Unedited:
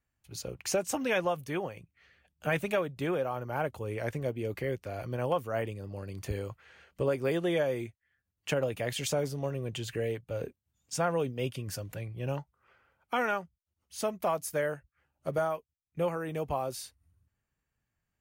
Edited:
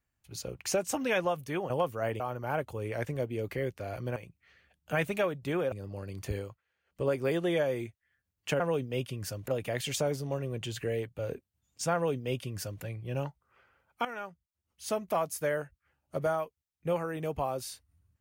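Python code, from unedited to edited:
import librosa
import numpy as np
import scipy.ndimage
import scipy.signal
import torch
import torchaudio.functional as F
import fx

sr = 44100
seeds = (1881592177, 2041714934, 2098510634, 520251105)

y = fx.edit(x, sr, fx.swap(start_s=1.7, length_s=1.56, other_s=5.22, other_length_s=0.5),
    fx.fade_down_up(start_s=6.37, length_s=0.71, db=-24.0, fade_s=0.24),
    fx.duplicate(start_s=11.06, length_s=0.88, to_s=8.6),
    fx.fade_in_from(start_s=13.17, length_s=0.81, floor_db=-13.5), tone=tone)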